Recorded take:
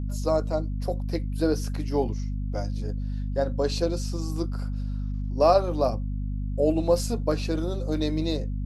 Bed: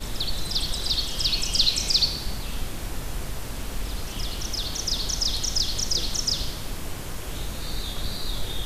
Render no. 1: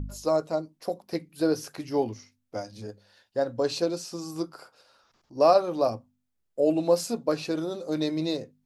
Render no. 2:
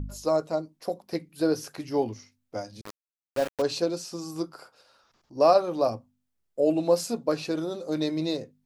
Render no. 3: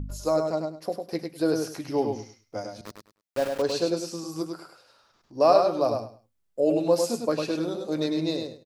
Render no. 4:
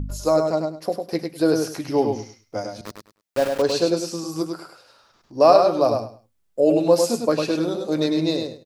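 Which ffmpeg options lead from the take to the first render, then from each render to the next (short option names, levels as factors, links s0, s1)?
-af "bandreject=f=50:t=h:w=4,bandreject=f=100:t=h:w=4,bandreject=f=150:t=h:w=4,bandreject=f=200:t=h:w=4,bandreject=f=250:t=h:w=4"
-filter_complex "[0:a]asettb=1/sr,asplit=3[s0][s1][s2];[s0]atrim=end=2.814[s3];[s1]atrim=start=2.81:end=3.62,asetpts=PTS-STARTPTS,afade=t=in:d=0.004:c=qsin,afade=t=out:st=0.806:d=0.004:c=qsin,aeval=exprs='val(0)*gte(abs(val(0)),0.0299)':c=same[s4];[s2]atrim=start=3.616[s5];[s3][s4]acrossfade=d=0.004:c1=hsin:c2=qsin[s6];[s6][s5]acrossfade=d=0.004:c1=qsin:c2=hsin"
-af "aecho=1:1:102|204|306:0.562|0.112|0.0225"
-af "volume=1.88,alimiter=limit=0.708:level=0:latency=1"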